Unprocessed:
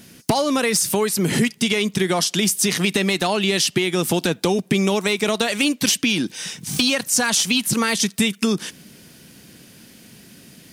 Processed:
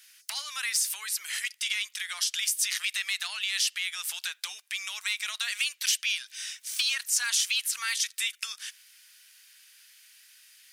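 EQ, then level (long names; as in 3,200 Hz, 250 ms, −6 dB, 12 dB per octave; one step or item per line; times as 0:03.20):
high-pass filter 1,500 Hz 24 dB per octave
−6.5 dB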